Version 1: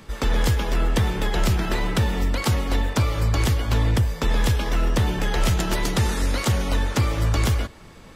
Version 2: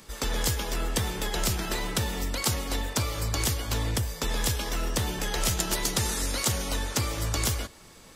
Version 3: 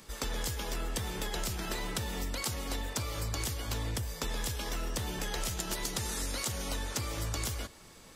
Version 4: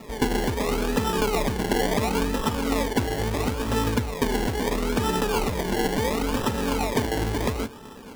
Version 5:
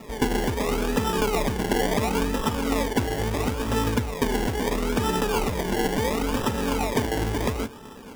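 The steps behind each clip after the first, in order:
tone controls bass -4 dB, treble +11 dB; gain -5.5 dB
compressor, threshold -28 dBFS, peak gain reduction 7.5 dB; gain -3 dB
small resonant body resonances 250/420/880/2000 Hz, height 16 dB; decimation with a swept rate 28×, swing 60% 0.73 Hz; gain +5 dB
notch 4200 Hz, Q 13

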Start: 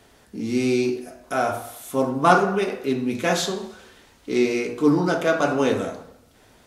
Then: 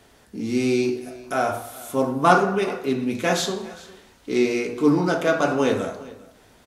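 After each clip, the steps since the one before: echo 0.405 s -20.5 dB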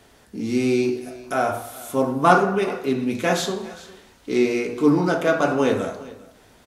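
dynamic EQ 5200 Hz, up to -3 dB, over -37 dBFS, Q 0.74; gain +1 dB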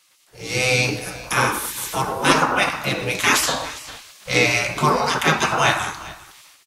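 spectral gate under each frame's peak -15 dB weak; AGC gain up to 13 dB; gain +1.5 dB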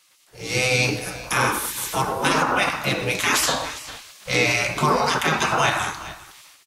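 limiter -9 dBFS, peak gain reduction 7.5 dB

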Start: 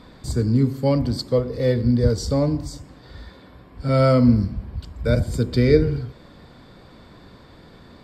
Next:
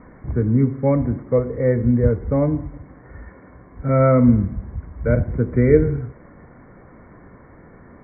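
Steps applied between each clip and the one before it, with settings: Chebyshev low-pass 2200 Hz, order 8; gain +2 dB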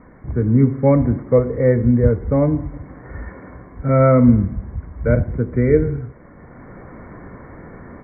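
AGC gain up to 8.5 dB; gain -1 dB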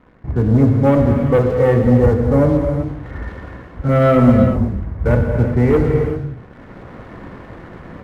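sample leveller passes 2; non-linear reverb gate 0.41 s flat, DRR 2.5 dB; gain -4.5 dB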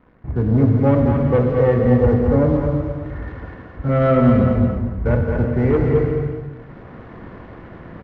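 air absorption 160 m; feedback echo 0.219 s, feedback 23%, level -5 dB; gain -3 dB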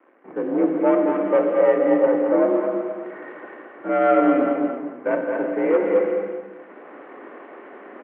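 mistuned SSB +54 Hz 250–2900 Hz

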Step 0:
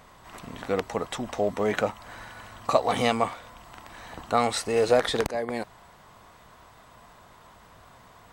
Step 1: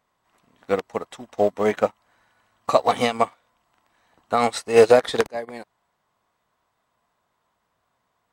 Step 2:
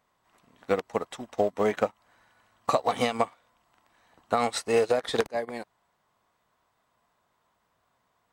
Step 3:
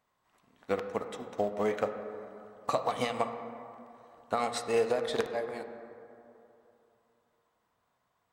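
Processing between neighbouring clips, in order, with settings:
low shelf 98 Hz -10.5 dB; maximiser +12 dB; upward expander 2.5:1, over -29 dBFS
compressor 8:1, threshold -20 dBFS, peak gain reduction 12.5 dB
reverb RT60 2.9 s, pre-delay 8 ms, DRR 7 dB; gain -5.5 dB

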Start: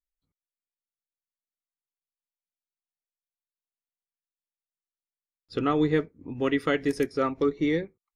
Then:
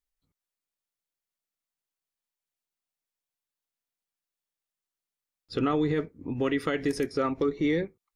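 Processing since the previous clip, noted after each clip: limiter -22 dBFS, peak gain reduction 10.5 dB; gain +4 dB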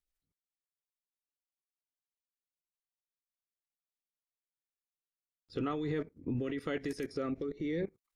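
level quantiser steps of 18 dB; rotary speaker horn 5 Hz, later 0.9 Hz, at 3.77; gain +3.5 dB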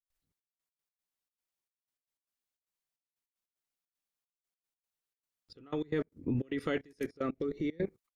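step gate ".xxx..x.x.xxx" 152 bpm -24 dB; gain +3 dB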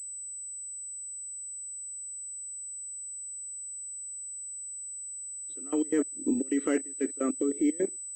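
nonlinear frequency compression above 2500 Hz 1.5:1; resonant low shelf 190 Hz -14 dB, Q 3; pulse-width modulation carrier 8000 Hz; gain +1 dB

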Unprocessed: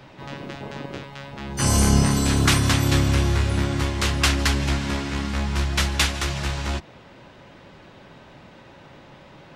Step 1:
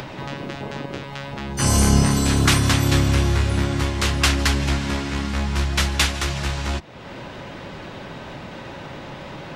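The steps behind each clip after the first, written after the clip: upward compressor, threshold -26 dBFS; gain +1.5 dB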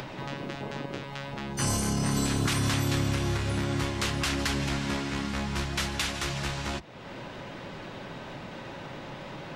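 limiter -12 dBFS, peak gain reduction 8.5 dB; bell 73 Hz -10.5 dB 0.34 oct; gain -5 dB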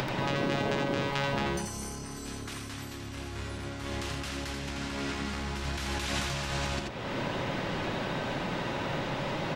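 negative-ratio compressor -36 dBFS, ratio -1; echo 84 ms -4 dB; gain +1.5 dB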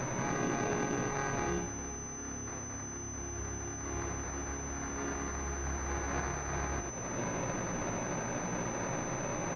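doubler 17 ms -3 dB; sample-and-hold 14×; pulse-width modulation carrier 6100 Hz; gain -5 dB

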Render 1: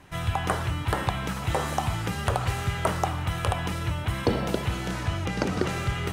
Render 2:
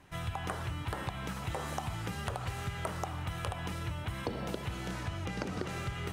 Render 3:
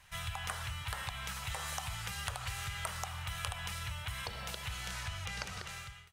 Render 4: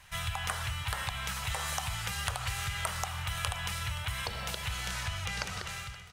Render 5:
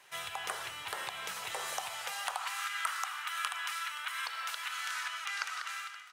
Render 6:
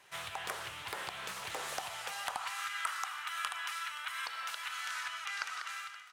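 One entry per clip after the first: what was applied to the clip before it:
compressor, threshold -25 dBFS, peak gain reduction 8 dB; gain -7 dB
ending faded out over 0.64 s; passive tone stack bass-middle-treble 10-0-10; gain +6.5 dB
echo 0.524 s -17 dB; gain +5 dB
in parallel at -10 dB: soft clip -26 dBFS, distortion -16 dB; on the sum: high-pass sweep 370 Hz -> 1300 Hz, 1.67–2.71; gain -5.5 dB
low shelf 310 Hz +7.5 dB; Doppler distortion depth 0.41 ms; gain -2 dB

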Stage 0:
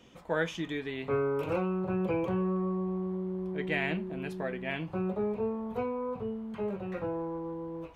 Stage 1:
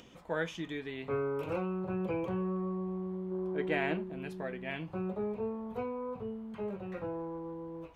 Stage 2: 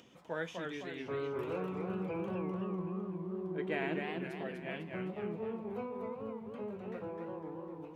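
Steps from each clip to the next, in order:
spectral gain 3.31–4.04, 260–1700 Hz +6 dB; upward compressor, threshold -46 dBFS; gain -4 dB
HPF 100 Hz 12 dB/oct; warbling echo 0.253 s, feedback 48%, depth 189 cents, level -4 dB; gain -4.5 dB

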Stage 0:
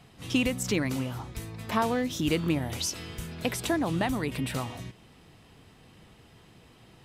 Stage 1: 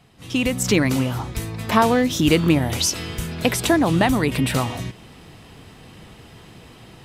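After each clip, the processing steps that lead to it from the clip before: AGC gain up to 11 dB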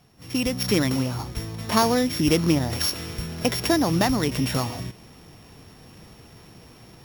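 sample sorter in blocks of 8 samples; gain -3.5 dB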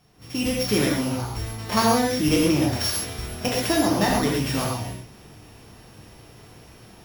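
non-linear reverb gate 0.16 s flat, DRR -3.5 dB; gain -3.5 dB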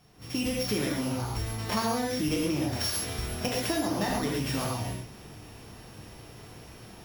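compressor 3:1, threshold -28 dBFS, peak gain reduction 10.5 dB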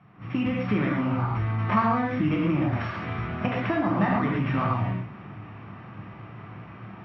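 speaker cabinet 110–2400 Hz, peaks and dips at 110 Hz +8 dB, 180 Hz +8 dB, 460 Hz -8 dB, 1200 Hz +9 dB, 2200 Hz +3 dB; gain +4 dB

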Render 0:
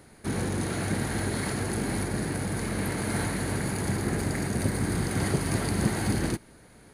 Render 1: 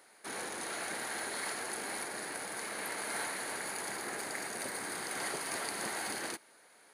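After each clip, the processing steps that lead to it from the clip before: HPF 650 Hz 12 dB/oct; gain -3 dB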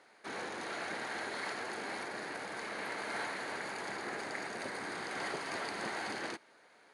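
air absorption 110 m; gain +1 dB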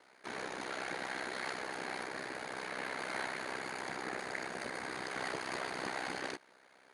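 ring modulator 32 Hz; gain +2.5 dB

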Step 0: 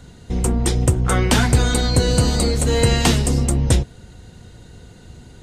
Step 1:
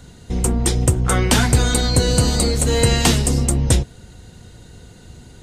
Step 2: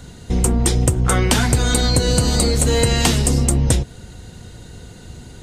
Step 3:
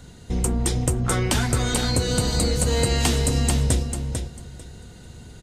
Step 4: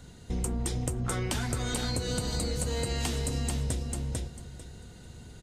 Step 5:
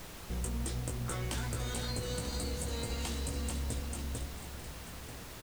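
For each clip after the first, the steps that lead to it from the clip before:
high shelf 5300 Hz +5 dB
compressor, threshold -16 dBFS, peak gain reduction 7.5 dB; gain +4 dB
feedback echo 0.446 s, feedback 19%, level -6 dB; gain -6 dB
compressor, threshold -22 dBFS, peak gain reduction 7 dB; gain -5 dB
doubler 18 ms -4.5 dB; added noise pink -40 dBFS; echo 0.938 s -13 dB; gain -7.5 dB

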